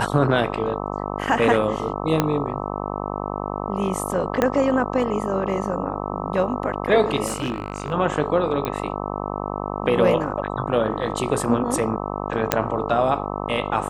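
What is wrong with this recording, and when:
buzz 50 Hz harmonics 26 -28 dBFS
2.2 pop -4 dBFS
4.42 pop -6 dBFS
7.26–7.93 clipped -20 dBFS
8.65 pop -12 dBFS
12.52 pop -1 dBFS

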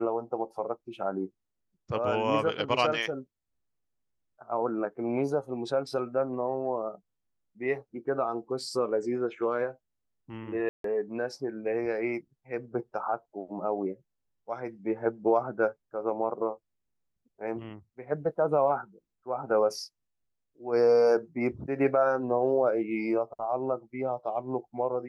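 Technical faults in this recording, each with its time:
10.69–10.84 gap 0.153 s

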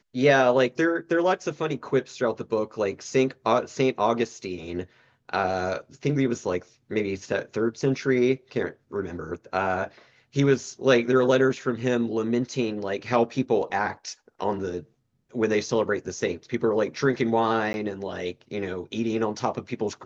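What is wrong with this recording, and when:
17.73–17.74 gap 11 ms

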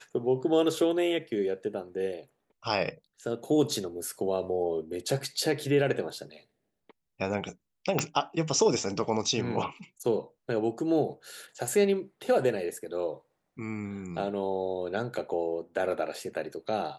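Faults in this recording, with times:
7.99 pop -11 dBFS

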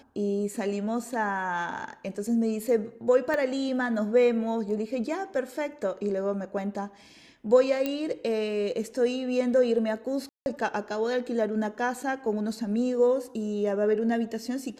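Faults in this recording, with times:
3.34 pop -18 dBFS
7.86 pop -15 dBFS
10.29–10.46 gap 0.171 s

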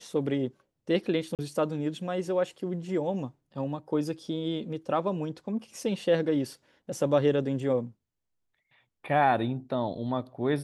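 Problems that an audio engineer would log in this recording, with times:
1.35–1.39 gap 38 ms

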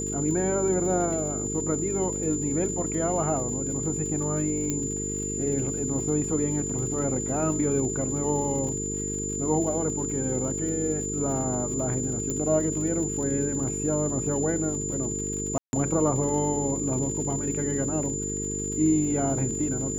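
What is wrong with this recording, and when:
buzz 50 Hz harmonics 9 -33 dBFS
crackle 82/s -36 dBFS
tone 7100 Hz -31 dBFS
4.7 pop -14 dBFS
12.3 pop -17 dBFS
15.58–15.73 gap 0.151 s

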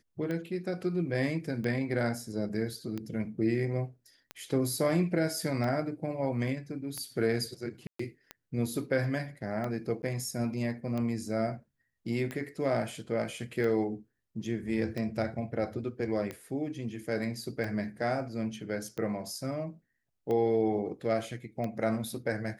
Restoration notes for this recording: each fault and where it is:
tick 45 rpm -23 dBFS
7.87–7.99 gap 0.124 s
10.02–10.03 gap 10 ms

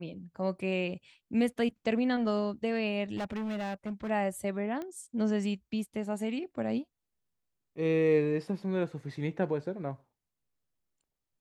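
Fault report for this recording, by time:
3.16–4.11 clipped -31.5 dBFS
4.82 pop -26 dBFS

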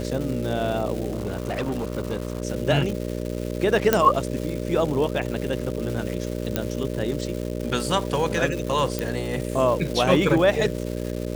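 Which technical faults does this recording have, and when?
buzz 60 Hz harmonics 10 -29 dBFS
crackle 480/s -30 dBFS
1.12–2.42 clipped -22 dBFS
3.93 pop -3 dBFS
6.56 pop -7 dBFS
8.99 pop

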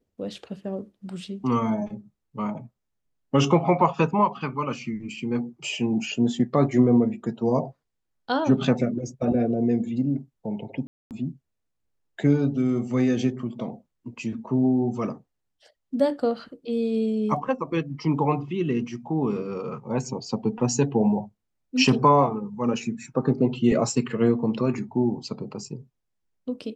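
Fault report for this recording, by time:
10.87–11.11 gap 0.238 s

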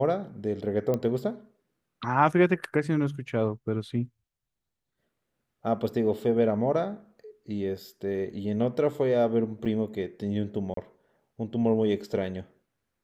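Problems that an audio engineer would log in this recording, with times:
0.94 pop -16 dBFS
9.65–9.66 gap 6.4 ms
10.74–10.77 gap 33 ms

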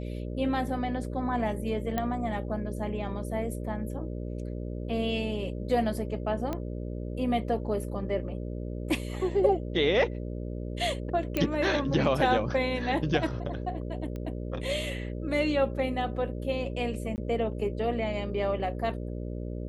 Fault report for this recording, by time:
buzz 60 Hz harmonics 10 -35 dBFS
1.98 pop -16 dBFS
6.53 pop -19 dBFS
11.37 pop -14 dBFS
14.16 pop -26 dBFS
17.16–17.18 gap 19 ms

